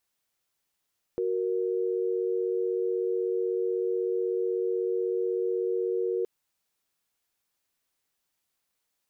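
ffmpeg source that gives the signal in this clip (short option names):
-f lavfi -i "aevalsrc='0.0398*(sin(2*PI*369.99*t)+sin(2*PI*466.16*t))':d=5.07:s=44100"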